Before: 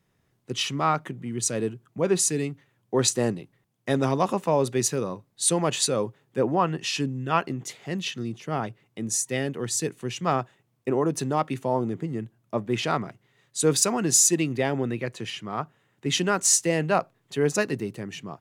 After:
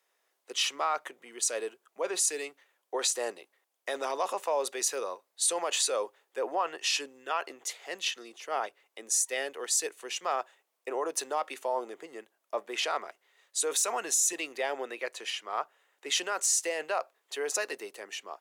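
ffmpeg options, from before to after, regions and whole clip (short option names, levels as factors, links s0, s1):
-filter_complex "[0:a]asettb=1/sr,asplit=3[s0][s1][s2];[s0]atrim=end=13.644[s3];[s1]atrim=start=13.64:end=14.33,asetpts=PTS-STARTPTS,afade=t=in:d=0.004:c=qsin,afade=t=out:st=0.686:d=0.004:c=qsin,asubboost=boost=11:cutoff=180,bandreject=f=4800:w=5.7[s4];[s2]atrim=start=14.326[s5];[s3][s4]acrossfade=d=0.004:c1=hsin:c2=qsin[s6];[s6][s5]acrossfade=d=0.004:c1=qsin:c2=hsin,highshelf=f=5000:g=4,alimiter=limit=0.15:level=0:latency=1:release=14,highpass=f=490:w=0.5412,highpass=f=490:w=1.3066,volume=0.891"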